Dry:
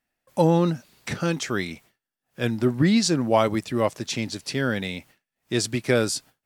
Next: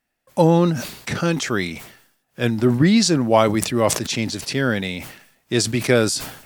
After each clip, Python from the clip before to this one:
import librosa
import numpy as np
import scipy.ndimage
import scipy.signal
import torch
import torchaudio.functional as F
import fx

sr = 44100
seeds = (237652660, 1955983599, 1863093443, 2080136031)

y = fx.sustainer(x, sr, db_per_s=83.0)
y = y * librosa.db_to_amplitude(4.0)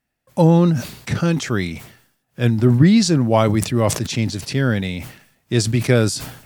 y = fx.peak_eq(x, sr, hz=100.0, db=10.0, octaves=2.0)
y = y * librosa.db_to_amplitude(-2.0)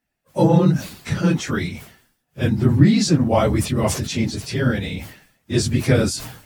y = fx.phase_scramble(x, sr, seeds[0], window_ms=50)
y = y * librosa.db_to_amplitude(-1.5)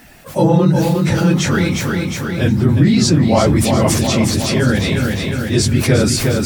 y = fx.echo_feedback(x, sr, ms=358, feedback_pct=49, wet_db=-7)
y = fx.env_flatten(y, sr, amount_pct=50)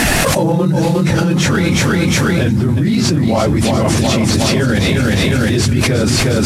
y = fx.cvsd(x, sr, bps=64000)
y = fx.env_flatten(y, sr, amount_pct=100)
y = y * librosa.db_to_amplitude(-5.0)